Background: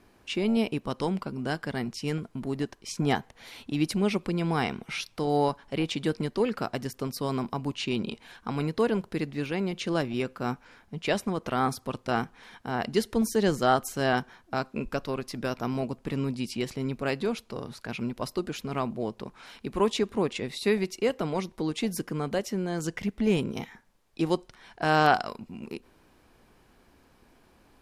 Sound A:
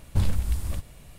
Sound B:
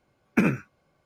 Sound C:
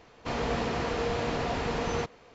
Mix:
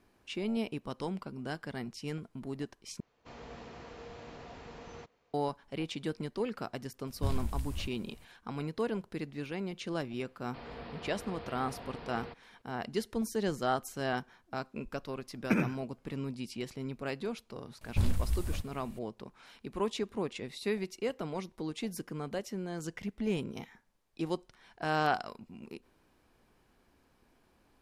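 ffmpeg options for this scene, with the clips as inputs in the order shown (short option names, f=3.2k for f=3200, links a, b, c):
-filter_complex "[3:a]asplit=2[a][b];[1:a]asplit=2[c][d];[0:a]volume=-8dB[e];[b]aresample=11025,aresample=44100[f];[e]asplit=2[g][h];[g]atrim=end=3.004[i];[a]atrim=end=2.34,asetpts=PTS-STARTPTS,volume=-18dB[j];[h]atrim=start=5.336[k];[c]atrim=end=1.18,asetpts=PTS-STARTPTS,volume=-9.5dB,afade=t=in:d=0.004:c=hsin,afade=t=out:st=1.176:d=0.004:c=hsin,adelay=7070[l];[f]atrim=end=2.34,asetpts=PTS-STARTPTS,volume=-15.5dB,afade=t=in:d=0.004:c=hsin,afade=t=out:st=2.336:d=0.004:c=hsin,adelay=10280[m];[2:a]atrim=end=1.05,asetpts=PTS-STARTPTS,volume=-7dB,afade=t=in:d=0.004:c=hsin,afade=t=out:st=1.046:d=0.004:c=hsin,adelay=15130[n];[d]atrim=end=1.18,asetpts=PTS-STARTPTS,volume=-5.5dB,afade=t=in:d=0.004:c=hsin,afade=t=out:st=1.176:d=0.004:c=hsin,adelay=17810[o];[i][j]acrossfade=d=0.004:c1=hsin:c2=hsin[p];[p][k]acrossfade=d=0.004:c1=hsin:c2=hsin[q];[q][l][m][n][o]amix=inputs=5:normalize=0"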